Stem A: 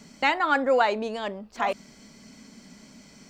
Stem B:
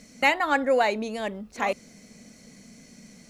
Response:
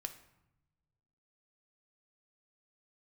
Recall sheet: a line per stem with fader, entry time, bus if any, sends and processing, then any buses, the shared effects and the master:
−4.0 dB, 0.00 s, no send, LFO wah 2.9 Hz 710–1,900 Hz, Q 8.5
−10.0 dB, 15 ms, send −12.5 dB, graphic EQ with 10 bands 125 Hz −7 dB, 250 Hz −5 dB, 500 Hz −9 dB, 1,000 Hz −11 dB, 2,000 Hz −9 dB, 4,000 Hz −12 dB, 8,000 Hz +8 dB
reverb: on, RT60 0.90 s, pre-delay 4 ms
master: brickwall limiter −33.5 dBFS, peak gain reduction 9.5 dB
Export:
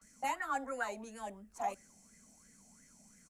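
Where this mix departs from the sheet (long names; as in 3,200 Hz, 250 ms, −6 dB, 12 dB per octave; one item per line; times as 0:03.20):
stem B: polarity flipped
master: missing brickwall limiter −33.5 dBFS, peak gain reduction 9.5 dB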